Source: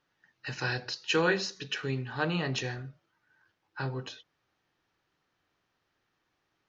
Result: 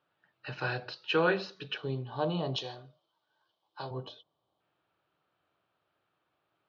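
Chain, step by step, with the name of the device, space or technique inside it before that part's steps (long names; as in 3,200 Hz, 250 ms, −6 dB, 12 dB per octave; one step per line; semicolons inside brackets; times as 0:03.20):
0:02.56–0:03.91: spectral tilt +3.5 dB per octave
0:01.77–0:04.60: gain on a spectral selection 1,200–2,900 Hz −13 dB
guitar cabinet (loudspeaker in its box 94–3,800 Hz, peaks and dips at 240 Hz −5 dB, 630 Hz +7 dB, 1,300 Hz +4 dB, 1,900 Hz −8 dB)
level −1 dB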